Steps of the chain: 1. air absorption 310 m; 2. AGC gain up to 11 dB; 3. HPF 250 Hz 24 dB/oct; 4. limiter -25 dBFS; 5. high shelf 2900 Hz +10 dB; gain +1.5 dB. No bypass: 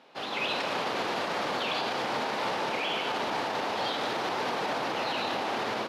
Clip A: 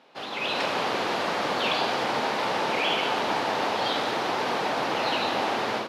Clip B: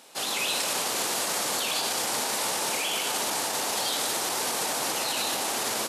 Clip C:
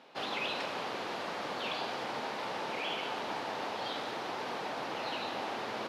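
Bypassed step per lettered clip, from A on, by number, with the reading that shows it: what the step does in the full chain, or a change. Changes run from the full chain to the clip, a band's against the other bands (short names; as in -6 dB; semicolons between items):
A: 4, mean gain reduction 4.0 dB; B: 1, 8 kHz band +23.0 dB; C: 2, momentary loudness spread change +2 LU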